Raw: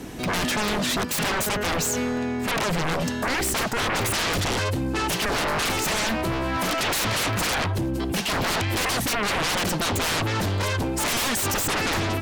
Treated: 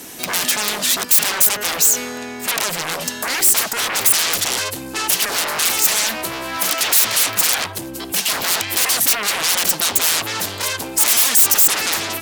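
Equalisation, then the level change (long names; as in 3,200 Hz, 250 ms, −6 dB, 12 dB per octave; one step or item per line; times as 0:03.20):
RIAA equalisation recording
+1.0 dB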